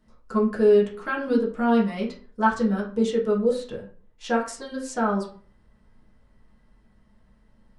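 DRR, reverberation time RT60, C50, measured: -5.0 dB, 0.45 s, 9.0 dB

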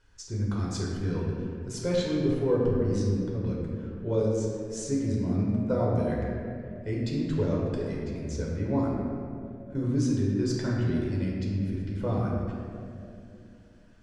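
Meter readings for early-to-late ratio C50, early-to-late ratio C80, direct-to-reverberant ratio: -0.5 dB, 1.0 dB, -4.0 dB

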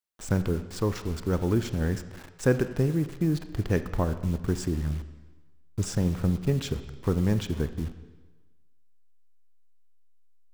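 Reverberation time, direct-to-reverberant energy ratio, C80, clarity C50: 1.3 s, 10.5 dB, 13.5 dB, 12.0 dB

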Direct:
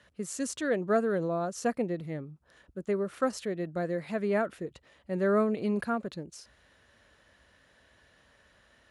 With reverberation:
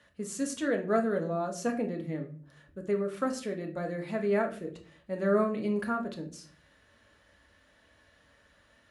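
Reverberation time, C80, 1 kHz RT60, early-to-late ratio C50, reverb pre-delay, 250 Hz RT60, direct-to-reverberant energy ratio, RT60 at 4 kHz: 0.45 s, 17.0 dB, 0.35 s, 11.5 dB, 3 ms, 0.70 s, 2.5 dB, 0.30 s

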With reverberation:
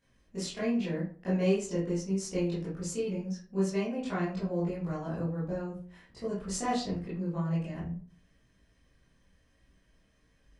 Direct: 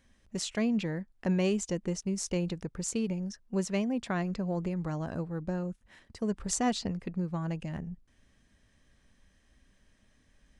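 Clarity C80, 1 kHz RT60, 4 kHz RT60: 10.5 dB, 0.45 s, 0.25 s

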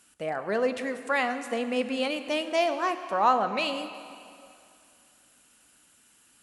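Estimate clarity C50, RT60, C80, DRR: 10.0 dB, 2.5 s, 11.0 dB, 9.0 dB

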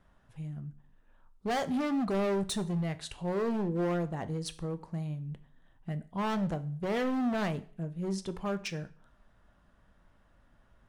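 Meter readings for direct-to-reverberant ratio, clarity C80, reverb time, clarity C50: 11.5 dB, 21.5 dB, 0.50 s, 17.5 dB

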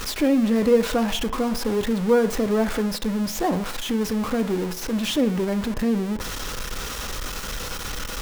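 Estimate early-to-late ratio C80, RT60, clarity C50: 17.5 dB, 0.60 s, 14.5 dB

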